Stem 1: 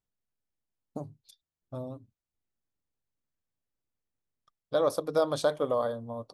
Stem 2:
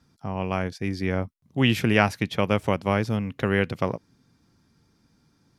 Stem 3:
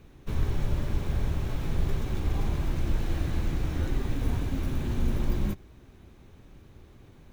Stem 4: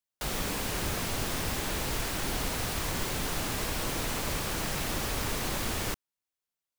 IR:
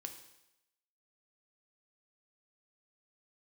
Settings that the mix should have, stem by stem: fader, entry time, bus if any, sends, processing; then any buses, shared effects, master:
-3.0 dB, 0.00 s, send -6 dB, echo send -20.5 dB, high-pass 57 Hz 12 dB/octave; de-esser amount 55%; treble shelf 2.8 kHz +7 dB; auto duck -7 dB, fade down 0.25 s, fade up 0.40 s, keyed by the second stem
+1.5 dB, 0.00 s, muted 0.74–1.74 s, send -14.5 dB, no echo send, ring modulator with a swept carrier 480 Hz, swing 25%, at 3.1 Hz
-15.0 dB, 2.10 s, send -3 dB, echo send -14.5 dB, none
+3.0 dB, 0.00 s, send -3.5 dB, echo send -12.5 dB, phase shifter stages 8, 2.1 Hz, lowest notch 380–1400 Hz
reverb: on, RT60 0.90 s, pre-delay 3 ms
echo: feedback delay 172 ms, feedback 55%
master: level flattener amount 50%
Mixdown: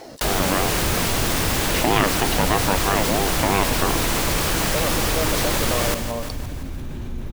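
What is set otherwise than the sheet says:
stem 3: send off; stem 4: missing phase shifter stages 8, 2.1 Hz, lowest notch 380–1400 Hz

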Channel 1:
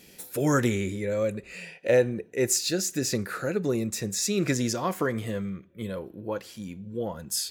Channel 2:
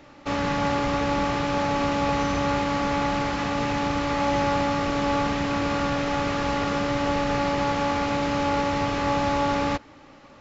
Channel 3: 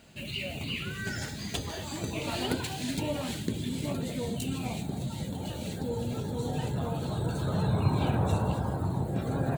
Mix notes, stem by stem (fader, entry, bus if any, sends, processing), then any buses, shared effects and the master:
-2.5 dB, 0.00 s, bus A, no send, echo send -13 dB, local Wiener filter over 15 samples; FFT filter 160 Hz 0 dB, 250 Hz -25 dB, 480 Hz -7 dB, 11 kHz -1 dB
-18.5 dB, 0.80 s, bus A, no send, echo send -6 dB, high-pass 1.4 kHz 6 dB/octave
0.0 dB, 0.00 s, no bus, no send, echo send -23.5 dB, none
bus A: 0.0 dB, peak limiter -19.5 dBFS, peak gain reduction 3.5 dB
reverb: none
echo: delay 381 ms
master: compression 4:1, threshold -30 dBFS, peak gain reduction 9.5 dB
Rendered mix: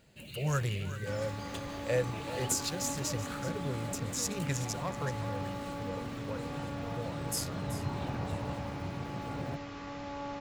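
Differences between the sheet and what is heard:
stem 2: missing high-pass 1.4 kHz 6 dB/octave; stem 3 0.0 dB -> -10.0 dB; master: missing compression 4:1, threshold -30 dBFS, peak gain reduction 9.5 dB

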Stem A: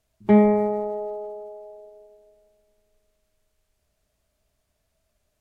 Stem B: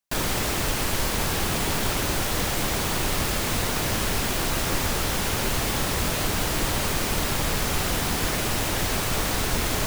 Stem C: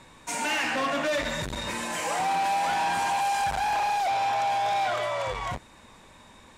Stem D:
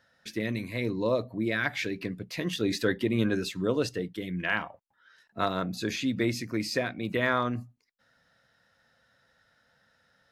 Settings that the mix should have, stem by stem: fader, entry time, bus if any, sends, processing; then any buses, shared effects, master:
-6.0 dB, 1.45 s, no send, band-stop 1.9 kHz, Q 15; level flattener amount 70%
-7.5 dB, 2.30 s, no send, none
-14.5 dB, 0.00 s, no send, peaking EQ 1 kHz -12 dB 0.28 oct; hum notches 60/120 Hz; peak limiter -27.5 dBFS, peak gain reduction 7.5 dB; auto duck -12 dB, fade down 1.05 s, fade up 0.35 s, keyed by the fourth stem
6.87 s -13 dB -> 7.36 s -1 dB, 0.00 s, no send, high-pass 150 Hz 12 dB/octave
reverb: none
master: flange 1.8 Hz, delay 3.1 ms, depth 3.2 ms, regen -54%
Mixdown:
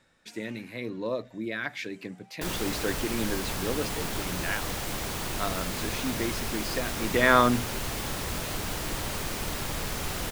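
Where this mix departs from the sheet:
stem A: muted; stem D -13.0 dB -> -4.0 dB; master: missing flange 1.8 Hz, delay 3.1 ms, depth 3.2 ms, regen -54%

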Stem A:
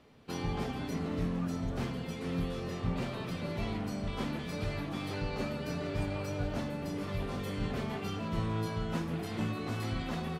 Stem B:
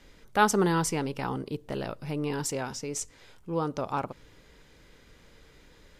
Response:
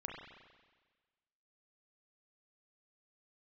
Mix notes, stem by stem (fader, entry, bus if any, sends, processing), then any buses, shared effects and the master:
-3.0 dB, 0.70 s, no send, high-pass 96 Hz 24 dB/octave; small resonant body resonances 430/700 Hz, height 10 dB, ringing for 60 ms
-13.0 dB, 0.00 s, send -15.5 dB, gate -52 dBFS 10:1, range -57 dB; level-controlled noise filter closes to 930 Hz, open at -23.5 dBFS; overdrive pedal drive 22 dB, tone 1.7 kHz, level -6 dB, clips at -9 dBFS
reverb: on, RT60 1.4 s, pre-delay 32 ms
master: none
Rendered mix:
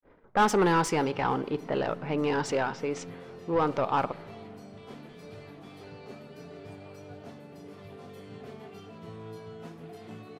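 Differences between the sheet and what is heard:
stem A -3.0 dB -> -11.0 dB; stem B -13.0 dB -> -5.0 dB

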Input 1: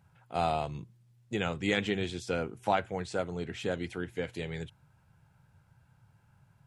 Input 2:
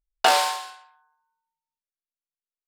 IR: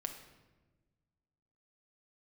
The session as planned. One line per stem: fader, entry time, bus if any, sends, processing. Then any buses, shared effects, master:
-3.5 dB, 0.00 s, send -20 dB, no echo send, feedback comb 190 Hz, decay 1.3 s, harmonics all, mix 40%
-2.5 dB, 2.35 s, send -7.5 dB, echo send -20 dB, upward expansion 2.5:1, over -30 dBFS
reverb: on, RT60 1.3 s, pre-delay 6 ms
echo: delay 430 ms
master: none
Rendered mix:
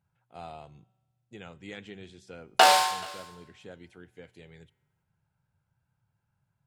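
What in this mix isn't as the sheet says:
stem 1 -3.5 dB -> -10.0 dB; stem 2: missing upward expansion 2.5:1, over -30 dBFS

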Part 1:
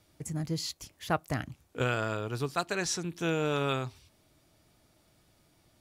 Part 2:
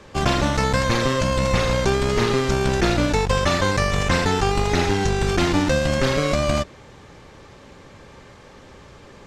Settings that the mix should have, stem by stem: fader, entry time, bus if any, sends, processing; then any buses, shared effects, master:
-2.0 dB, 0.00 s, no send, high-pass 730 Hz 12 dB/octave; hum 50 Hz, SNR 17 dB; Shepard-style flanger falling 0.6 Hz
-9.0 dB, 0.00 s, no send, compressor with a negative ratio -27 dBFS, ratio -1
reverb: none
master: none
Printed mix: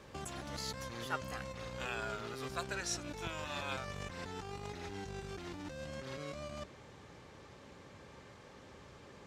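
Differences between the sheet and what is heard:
stem 2 -9.0 dB -> -17.0 dB; master: extra high-pass 62 Hz

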